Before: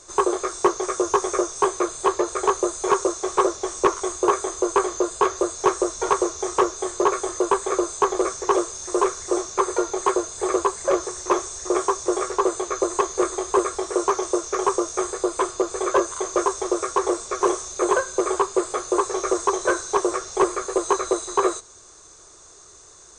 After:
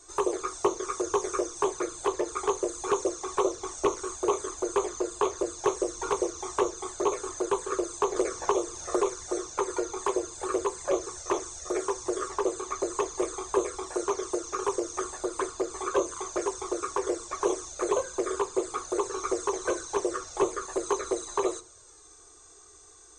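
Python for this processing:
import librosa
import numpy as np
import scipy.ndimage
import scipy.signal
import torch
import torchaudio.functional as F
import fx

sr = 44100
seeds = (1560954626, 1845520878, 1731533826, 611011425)

y = fx.env_flanger(x, sr, rest_ms=2.8, full_db=-15.5)
y = fx.rev_fdn(y, sr, rt60_s=0.35, lf_ratio=1.35, hf_ratio=0.5, size_ms=20.0, drr_db=11.5)
y = y + 10.0 ** (-54.0 / 20.0) * np.sin(2.0 * np.pi * 8300.0 * np.arange(len(y)) / sr)
y = fx.band_squash(y, sr, depth_pct=100, at=(8.16, 9.14))
y = y * librosa.db_to_amplitude(-4.0)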